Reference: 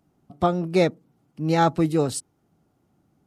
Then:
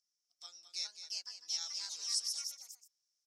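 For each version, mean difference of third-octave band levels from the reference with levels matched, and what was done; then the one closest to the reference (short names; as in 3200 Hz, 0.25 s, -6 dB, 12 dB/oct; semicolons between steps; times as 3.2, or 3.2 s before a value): 17.5 dB: echo 0.214 s -10.5 dB; echoes that change speed 0.481 s, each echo +3 st, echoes 3; ladder band-pass 5700 Hz, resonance 80%; gain +4 dB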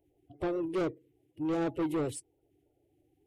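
5.0 dB: bin magnitudes rounded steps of 30 dB; EQ curve 130 Hz 0 dB, 210 Hz -21 dB, 300 Hz +5 dB, 460 Hz +3 dB, 1300 Hz -16 dB, 2000 Hz 0 dB, 3100 Hz +1 dB, 4700 Hz -14 dB, 11000 Hz -2 dB; soft clip -22 dBFS, distortion -9 dB; gain -5 dB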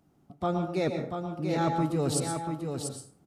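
6.5 dB: reverse; compressor, threshold -26 dBFS, peak gain reduction 11.5 dB; reverse; echo 0.688 s -6 dB; plate-style reverb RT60 0.53 s, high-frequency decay 0.6×, pre-delay 0.1 s, DRR 5 dB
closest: second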